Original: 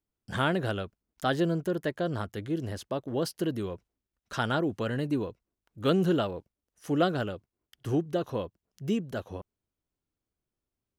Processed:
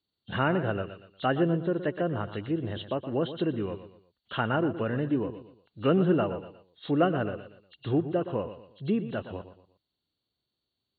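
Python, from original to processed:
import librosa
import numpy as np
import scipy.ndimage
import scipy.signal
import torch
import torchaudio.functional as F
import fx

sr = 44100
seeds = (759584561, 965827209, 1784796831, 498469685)

y = fx.freq_compress(x, sr, knee_hz=2700.0, ratio=4.0)
y = scipy.signal.sosfilt(scipy.signal.butter(2, 78.0, 'highpass', fs=sr, output='sos'), y)
y = fx.echo_feedback(y, sr, ms=119, feedback_pct=34, wet_db=-12.0)
y = fx.env_lowpass_down(y, sr, base_hz=1900.0, full_db=-27.0)
y = F.gain(torch.from_numpy(y), 1.5).numpy()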